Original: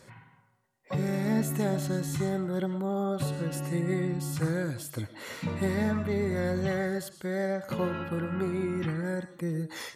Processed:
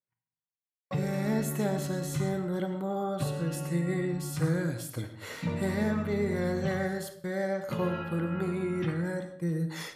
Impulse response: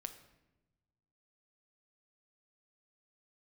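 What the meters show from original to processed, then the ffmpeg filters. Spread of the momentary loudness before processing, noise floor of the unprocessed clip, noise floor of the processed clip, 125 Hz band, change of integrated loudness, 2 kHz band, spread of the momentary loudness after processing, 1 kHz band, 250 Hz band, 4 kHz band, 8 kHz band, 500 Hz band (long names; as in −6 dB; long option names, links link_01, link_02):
6 LU, −61 dBFS, below −85 dBFS, −0.5 dB, −0.5 dB, −0.5 dB, 5 LU, 0.0 dB, −1.0 dB, −0.5 dB, −0.5 dB, −0.5 dB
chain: -filter_complex "[0:a]agate=range=-45dB:threshold=-43dB:ratio=16:detection=peak[link_01];[1:a]atrim=start_sample=2205,afade=type=out:start_time=0.26:duration=0.01,atrim=end_sample=11907[link_02];[link_01][link_02]afir=irnorm=-1:irlink=0,volume=3dB"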